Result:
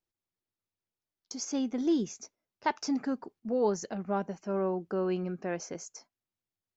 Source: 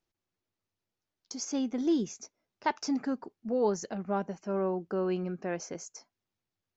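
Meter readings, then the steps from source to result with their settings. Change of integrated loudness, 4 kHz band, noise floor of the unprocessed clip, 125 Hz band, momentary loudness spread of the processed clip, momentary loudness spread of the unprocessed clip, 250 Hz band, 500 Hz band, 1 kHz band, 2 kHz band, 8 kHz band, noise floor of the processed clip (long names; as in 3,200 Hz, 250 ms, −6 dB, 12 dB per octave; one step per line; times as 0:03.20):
0.0 dB, 0.0 dB, below −85 dBFS, 0.0 dB, 14 LU, 14 LU, 0.0 dB, 0.0 dB, 0.0 dB, 0.0 dB, can't be measured, below −85 dBFS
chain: noise gate −56 dBFS, range −7 dB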